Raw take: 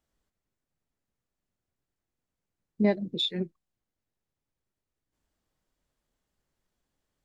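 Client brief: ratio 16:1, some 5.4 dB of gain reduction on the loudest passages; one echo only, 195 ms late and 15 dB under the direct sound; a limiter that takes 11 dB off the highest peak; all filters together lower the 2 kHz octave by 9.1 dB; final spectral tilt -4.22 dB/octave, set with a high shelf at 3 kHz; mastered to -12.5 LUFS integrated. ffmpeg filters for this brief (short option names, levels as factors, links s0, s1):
-af "equalizer=f=2000:t=o:g=-7,highshelf=f=3000:g=-8.5,acompressor=threshold=0.0708:ratio=16,alimiter=level_in=1.78:limit=0.0631:level=0:latency=1,volume=0.562,aecho=1:1:195:0.178,volume=20"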